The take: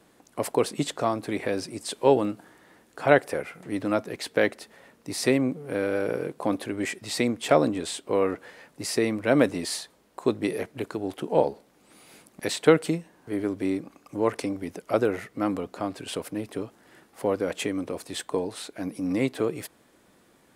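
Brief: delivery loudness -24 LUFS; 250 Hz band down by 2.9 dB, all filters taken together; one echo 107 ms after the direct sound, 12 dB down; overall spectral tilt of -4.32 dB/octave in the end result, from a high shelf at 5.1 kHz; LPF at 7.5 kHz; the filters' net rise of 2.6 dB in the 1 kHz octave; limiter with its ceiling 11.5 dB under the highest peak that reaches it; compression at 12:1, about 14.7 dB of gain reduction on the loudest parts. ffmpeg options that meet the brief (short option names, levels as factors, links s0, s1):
-af "lowpass=7500,equalizer=f=250:t=o:g=-4,equalizer=f=1000:t=o:g=4,highshelf=f=5100:g=-4.5,acompressor=threshold=0.0447:ratio=12,alimiter=limit=0.0708:level=0:latency=1,aecho=1:1:107:0.251,volume=3.98"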